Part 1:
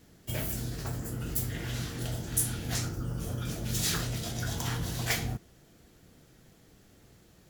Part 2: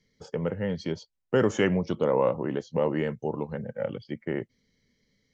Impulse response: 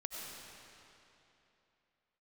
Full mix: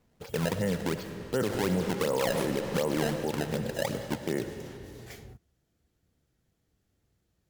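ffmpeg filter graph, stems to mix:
-filter_complex "[0:a]equalizer=f=70:w=1.3:g=8.5,volume=-18.5dB[a];[1:a]acrusher=samples=22:mix=1:aa=0.000001:lfo=1:lforange=35.2:lforate=2.7,volume=-1dB,asplit=2[b][c];[c]volume=-4.5dB[d];[2:a]atrim=start_sample=2205[e];[d][e]afir=irnorm=-1:irlink=0[f];[a][b][f]amix=inputs=3:normalize=0,alimiter=limit=-19.5dB:level=0:latency=1:release=61"

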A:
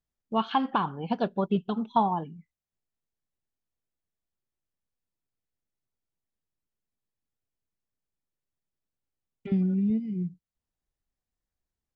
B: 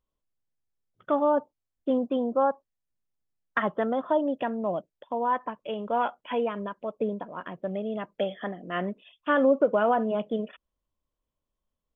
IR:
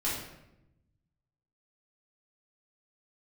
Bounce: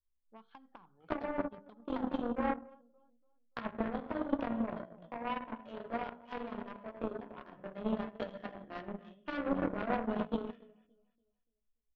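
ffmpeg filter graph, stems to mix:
-filter_complex "[0:a]bass=f=250:g=-7,treble=f=4k:g=-5,bandreject=f=2.8k:w=5.2,acrossover=split=230[a][b];[b]acompressor=threshold=-33dB:ratio=4[c];[a][c]amix=inputs=2:normalize=0,volume=-7dB[d];[1:a]acrossover=split=230|1500[e][f][g];[e]acompressor=threshold=-37dB:ratio=4[h];[f]acompressor=threshold=-33dB:ratio=4[i];[g]acompressor=threshold=-51dB:ratio=4[j];[h][i][j]amix=inputs=3:normalize=0,flanger=delay=16.5:depth=3.9:speed=0.86,lowshelf=f=130:g=11.5,volume=-1.5dB,asplit=3[k][l][m];[l]volume=-5dB[n];[m]volume=-7dB[o];[2:a]atrim=start_sample=2205[p];[n][p]afir=irnorm=-1:irlink=0[q];[o]aecho=0:1:288|576|864|1152|1440:1|0.34|0.116|0.0393|0.0134[r];[d][k][q][r]amix=inputs=4:normalize=0,bandreject=f=50:t=h:w=6,bandreject=f=100:t=h:w=6,bandreject=f=150:t=h:w=6,bandreject=f=200:t=h:w=6,bandreject=f=250:t=h:w=6,bandreject=f=300:t=h:w=6,bandreject=f=350:t=h:w=6,bandreject=f=400:t=h:w=6,bandreject=f=450:t=h:w=6,bandreject=f=500:t=h:w=6,aeval=exprs='0.224*(cos(1*acos(clip(val(0)/0.224,-1,1)))-cos(1*PI/2))+0.0282*(cos(7*acos(clip(val(0)/0.224,-1,1)))-cos(7*PI/2))':c=same"

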